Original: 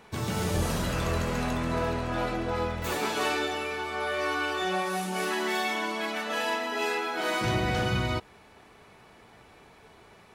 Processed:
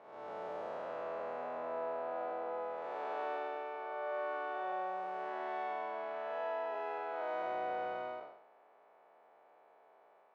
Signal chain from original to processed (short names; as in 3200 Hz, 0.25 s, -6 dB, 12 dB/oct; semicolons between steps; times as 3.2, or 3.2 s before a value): time blur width 0.271 s; ladder band-pass 740 Hz, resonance 45%; gain +3.5 dB